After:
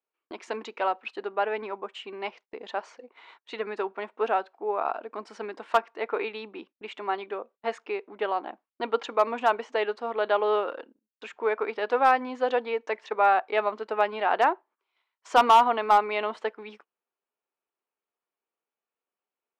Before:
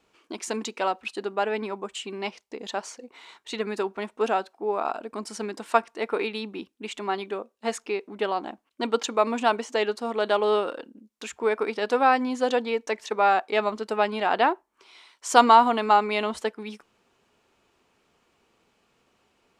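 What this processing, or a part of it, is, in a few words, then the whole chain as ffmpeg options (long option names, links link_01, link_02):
walkie-talkie: -af "highpass=400,lowpass=2500,asoftclip=type=hard:threshold=-11dB,agate=range=-24dB:threshold=-51dB:ratio=16:detection=peak"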